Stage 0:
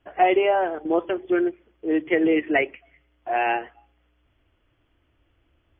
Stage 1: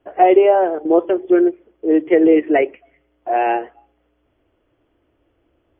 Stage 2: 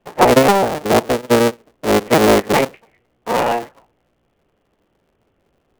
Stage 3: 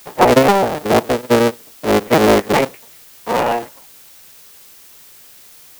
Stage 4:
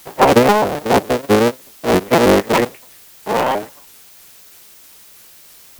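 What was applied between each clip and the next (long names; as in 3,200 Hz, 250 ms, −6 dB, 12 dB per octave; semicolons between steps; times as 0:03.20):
parametric band 450 Hz +13.5 dB 2.4 octaves; level −4 dB
sub-harmonics by changed cycles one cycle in 3, inverted
background noise blue −41 dBFS; in parallel at −10.5 dB: sample-rate reduction 16,000 Hz; on the sum: level −2 dB
pitch modulation by a square or saw wave saw up 3.1 Hz, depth 250 cents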